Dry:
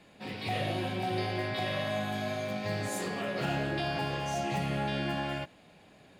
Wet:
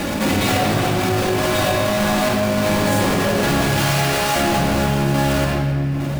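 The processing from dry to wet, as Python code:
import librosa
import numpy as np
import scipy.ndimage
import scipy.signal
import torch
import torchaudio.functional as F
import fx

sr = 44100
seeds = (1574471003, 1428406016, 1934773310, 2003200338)

y = fx.halfwave_hold(x, sr)
y = fx.highpass(y, sr, hz=1200.0, slope=6, at=(3.61, 4.36))
y = fx.rider(y, sr, range_db=10, speed_s=0.5)
y = fx.tremolo_random(y, sr, seeds[0], hz=3.5, depth_pct=55)
y = fx.room_shoebox(y, sr, seeds[1], volume_m3=3600.0, walls='mixed', distance_m=2.4)
y = fx.env_flatten(y, sr, amount_pct=70)
y = y * 10.0 ** (7.5 / 20.0)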